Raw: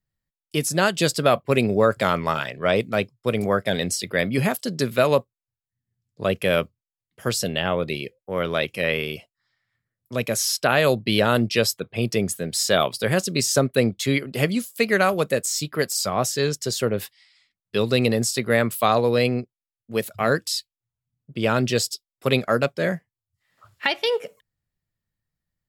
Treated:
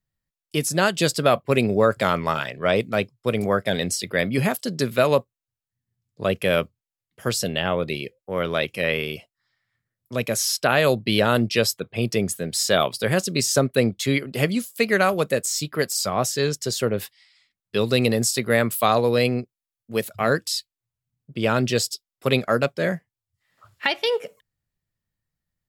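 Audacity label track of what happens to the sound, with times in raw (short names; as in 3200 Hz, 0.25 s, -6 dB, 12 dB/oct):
17.820000	20.020000	high shelf 7000 Hz +4.5 dB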